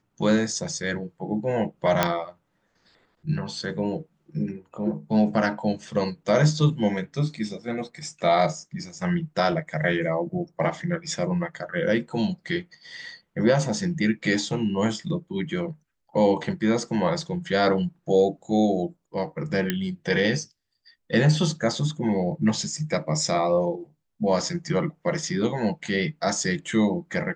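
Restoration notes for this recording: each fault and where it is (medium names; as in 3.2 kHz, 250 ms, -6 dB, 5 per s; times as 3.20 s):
2.03 s: pop -4 dBFS
19.70 s: pop -9 dBFS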